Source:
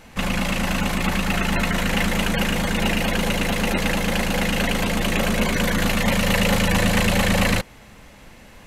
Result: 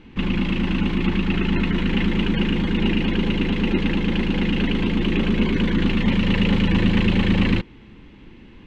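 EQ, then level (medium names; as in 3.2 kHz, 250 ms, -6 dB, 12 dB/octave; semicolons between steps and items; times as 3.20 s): resonant low-pass 3.1 kHz, resonance Q 2.2; resonant low shelf 470 Hz +10 dB, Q 3; peaking EQ 920 Hz +6.5 dB 0.53 oct; -9.0 dB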